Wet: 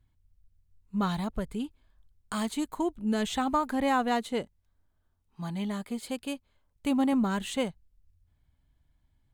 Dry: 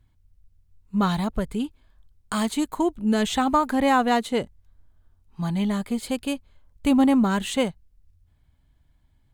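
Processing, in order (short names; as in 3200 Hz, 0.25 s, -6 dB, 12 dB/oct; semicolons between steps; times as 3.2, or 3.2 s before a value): 4.41–7.13 low shelf 97 Hz -11 dB; gain -6.5 dB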